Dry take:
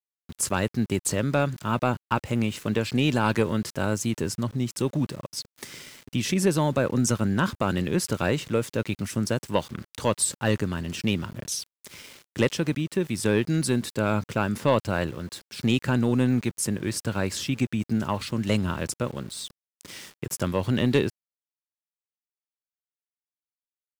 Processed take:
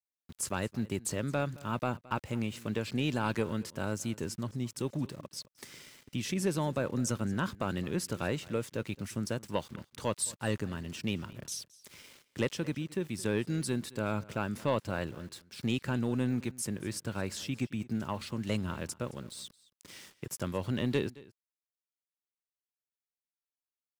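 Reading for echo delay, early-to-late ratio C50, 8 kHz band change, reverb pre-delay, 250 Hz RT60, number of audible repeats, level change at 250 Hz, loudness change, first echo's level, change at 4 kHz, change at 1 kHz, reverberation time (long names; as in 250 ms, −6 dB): 219 ms, no reverb audible, −8.5 dB, no reverb audible, no reverb audible, 1, −8.5 dB, −8.5 dB, −21.0 dB, −8.5 dB, −8.5 dB, no reverb audible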